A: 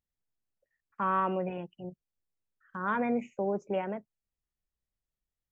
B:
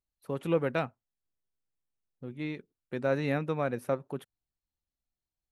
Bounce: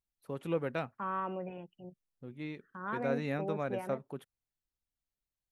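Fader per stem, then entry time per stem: -7.5, -5.5 dB; 0.00, 0.00 s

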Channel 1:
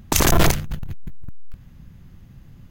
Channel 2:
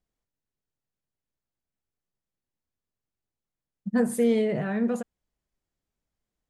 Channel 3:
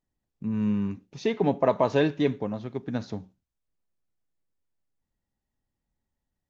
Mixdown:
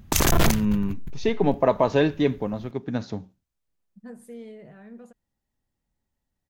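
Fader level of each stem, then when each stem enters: -3.5, -18.5, +2.5 dB; 0.00, 0.10, 0.00 s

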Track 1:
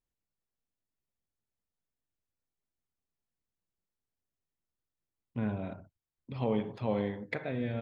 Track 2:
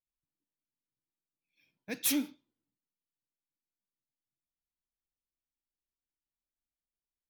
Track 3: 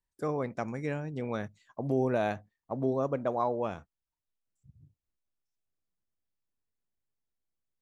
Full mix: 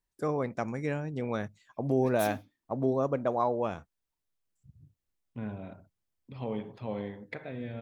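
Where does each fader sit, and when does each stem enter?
-4.5, -11.5, +1.5 dB; 0.00, 0.15, 0.00 s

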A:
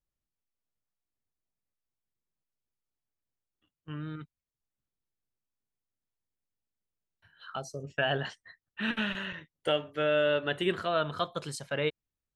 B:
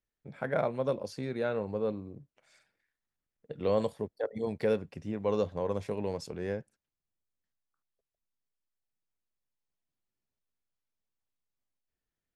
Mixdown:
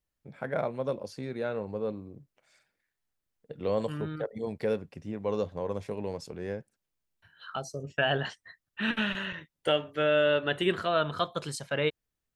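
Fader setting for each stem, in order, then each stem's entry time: +2.0, -1.0 dB; 0.00, 0.00 s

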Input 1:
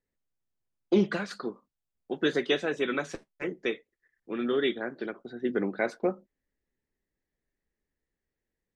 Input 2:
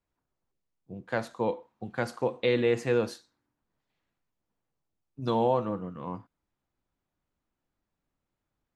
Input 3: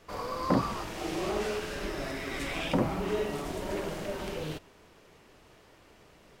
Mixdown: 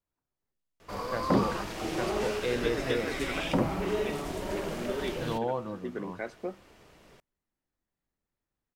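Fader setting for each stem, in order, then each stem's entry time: -8.5, -6.0, +0.5 dB; 0.40, 0.00, 0.80 s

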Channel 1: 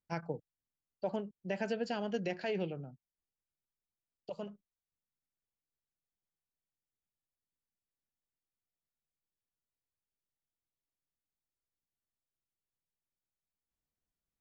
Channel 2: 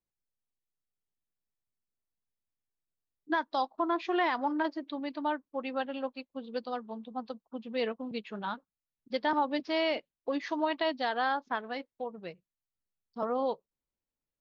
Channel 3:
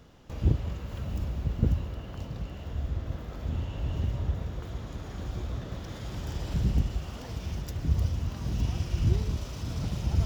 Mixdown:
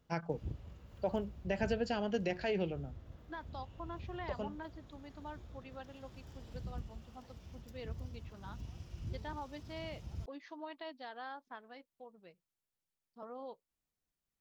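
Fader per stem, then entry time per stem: +1.0, -16.0, -18.0 dB; 0.00, 0.00, 0.00 s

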